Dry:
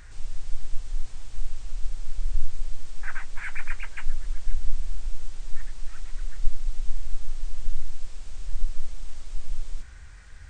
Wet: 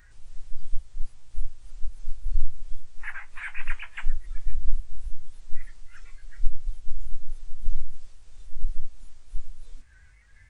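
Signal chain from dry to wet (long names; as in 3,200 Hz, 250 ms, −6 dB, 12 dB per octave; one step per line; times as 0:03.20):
pitch shifter swept by a sawtooth +2 semitones, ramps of 284 ms
noise reduction from a noise print of the clip's start 11 dB
level +1.5 dB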